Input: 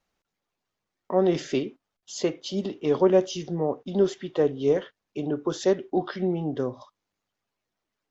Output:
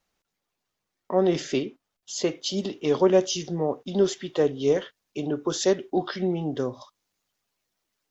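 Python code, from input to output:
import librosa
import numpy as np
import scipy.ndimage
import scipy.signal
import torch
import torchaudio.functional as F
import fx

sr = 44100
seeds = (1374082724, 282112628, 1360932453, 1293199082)

y = fx.high_shelf(x, sr, hz=3400.0, db=fx.steps((0.0, 5.0), (2.28, 11.0)))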